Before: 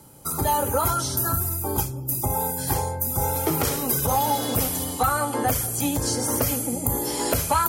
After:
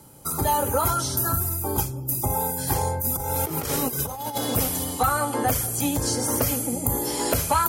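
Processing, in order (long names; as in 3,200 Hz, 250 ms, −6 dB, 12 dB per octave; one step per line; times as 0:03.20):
0:02.81–0:04.38: compressor whose output falls as the input rises −26 dBFS, ratio −0.5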